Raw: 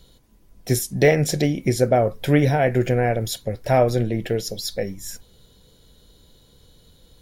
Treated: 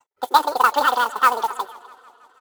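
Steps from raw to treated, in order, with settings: gate -51 dBFS, range -37 dB; low-pass 1.6 kHz 12 dB/octave; spectral noise reduction 14 dB; high-pass 390 Hz 12 dB/octave; comb 4.5 ms, depth 36%; tempo 1.5×; modulation noise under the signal 16 dB; echo from a far wall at 86 m, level -20 dB; speed mistake 7.5 ips tape played at 15 ips; modulated delay 162 ms, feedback 71%, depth 115 cents, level -23 dB; trim +4 dB

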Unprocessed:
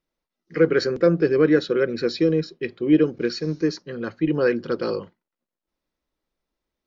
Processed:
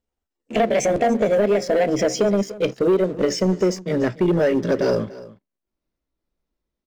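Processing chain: pitch bend over the whole clip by +6.5 st ending unshifted; bass shelf 390 Hz +9.5 dB; compression 6:1, threshold -20 dBFS, peak gain reduction 12.5 dB; waveshaping leveller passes 2; on a send: delay 290 ms -18 dB

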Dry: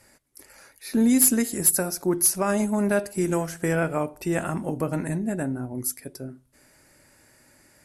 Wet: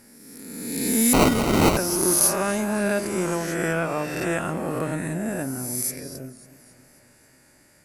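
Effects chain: reverse spectral sustain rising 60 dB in 1.61 s; dynamic bell 3.3 kHz, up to +5 dB, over -41 dBFS, Q 1.1; 1.13–1.77 s: sample-rate reducer 1.7 kHz, jitter 0%; modulated delay 273 ms, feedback 62%, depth 122 cents, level -19 dB; trim -3 dB

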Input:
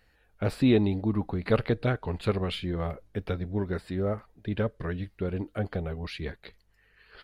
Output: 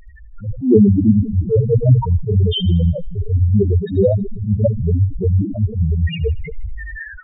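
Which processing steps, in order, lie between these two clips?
jump at every zero crossing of -33 dBFS; hum notches 60/120/180/240/300/360/420/480/540 Hz; on a send at -11 dB: reverberation RT60 1.7 s, pre-delay 10 ms; on the sum: loudest bins only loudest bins 2; feedback echo behind a high-pass 79 ms, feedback 48%, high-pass 3.8 kHz, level -11 dB; level rider gain up to 14.5 dB; attacks held to a fixed rise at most 150 dB/s; trim +5.5 dB

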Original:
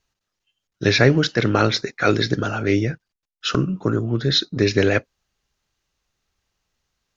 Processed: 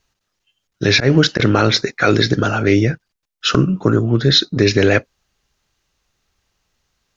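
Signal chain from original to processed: 0.90–1.40 s: slow attack 148 ms; loudness maximiser +7.5 dB; trim -1 dB

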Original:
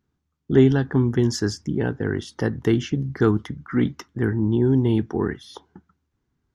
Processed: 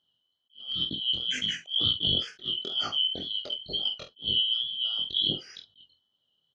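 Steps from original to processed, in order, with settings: four frequency bands reordered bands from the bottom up 2413; high-pass 71 Hz; peaking EQ 2.3 kHz -9 dB 0.39 oct; compressor with a negative ratio -24 dBFS, ratio -0.5; chorus 2.1 Hz, delay 19 ms, depth 5.7 ms; distance through air 170 m; doubling 48 ms -10 dB; attacks held to a fixed rise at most 270 dB/s; trim +2.5 dB

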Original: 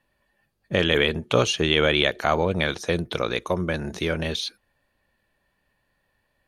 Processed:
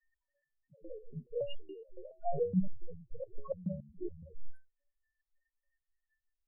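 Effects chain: tracing distortion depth 0.31 ms; 2.17–4.26 s: bass shelf 410 Hz +11 dB; compression 2.5:1, threshold -22 dBFS, peak gain reduction 7.5 dB; loudest bins only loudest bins 2; resonator arpeggio 7.1 Hz 140–1200 Hz; trim +8 dB

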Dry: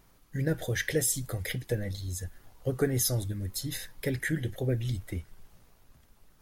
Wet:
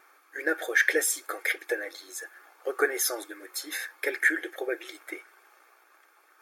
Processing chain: brick-wall FIR high-pass 300 Hz; high-order bell 1.4 kHz +12 dB; comb of notches 990 Hz; trim +2 dB

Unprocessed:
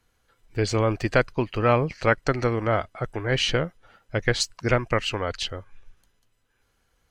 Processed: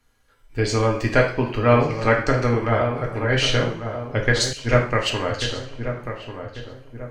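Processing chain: filtered feedback delay 1142 ms, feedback 44%, low-pass 1.4 kHz, level -8.5 dB; two-slope reverb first 0.49 s, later 1.7 s, from -24 dB, DRR -1 dB; 4.53–5.10 s: three bands expanded up and down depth 70%

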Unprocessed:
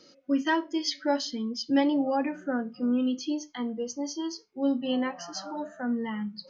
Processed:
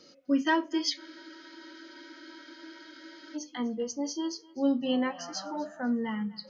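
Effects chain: thinning echo 250 ms, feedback 24%, high-pass 420 Hz, level -20 dB; spectral freeze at 1.00 s, 2.36 s

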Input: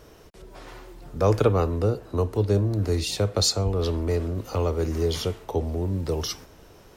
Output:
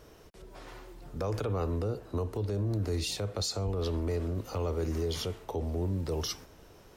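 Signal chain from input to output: peak limiter -19 dBFS, peak gain reduction 11.5 dB; trim -4.5 dB

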